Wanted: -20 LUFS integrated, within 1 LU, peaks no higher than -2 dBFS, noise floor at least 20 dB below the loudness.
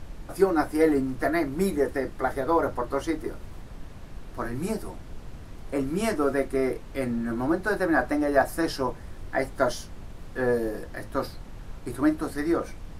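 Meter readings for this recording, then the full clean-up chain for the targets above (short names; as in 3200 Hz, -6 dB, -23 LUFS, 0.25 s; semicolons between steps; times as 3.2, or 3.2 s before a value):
noise floor -42 dBFS; noise floor target -47 dBFS; loudness -27.0 LUFS; peak -8.0 dBFS; loudness target -20.0 LUFS
-> noise print and reduce 6 dB; gain +7 dB; limiter -2 dBFS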